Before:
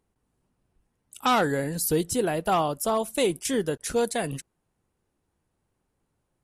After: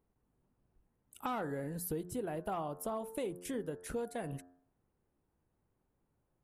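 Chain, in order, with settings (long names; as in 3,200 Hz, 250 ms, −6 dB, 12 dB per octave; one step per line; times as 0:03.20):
parametric band 5,600 Hz −14 dB 2.2 octaves
hum removal 89.1 Hz, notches 20
downward compressor 3 to 1, threshold −36 dBFS, peak gain reduction 12 dB
level −2.5 dB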